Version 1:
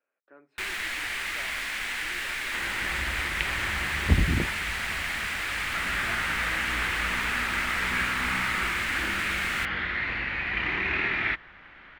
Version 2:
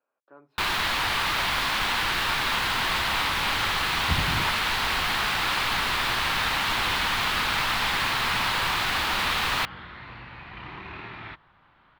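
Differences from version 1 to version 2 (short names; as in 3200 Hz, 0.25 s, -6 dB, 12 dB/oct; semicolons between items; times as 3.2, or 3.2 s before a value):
first sound +8.5 dB; second sound -10.5 dB; master: add ten-band EQ 125 Hz +10 dB, 1000 Hz +10 dB, 2000 Hz -10 dB, 4000 Hz +6 dB, 8000 Hz -8 dB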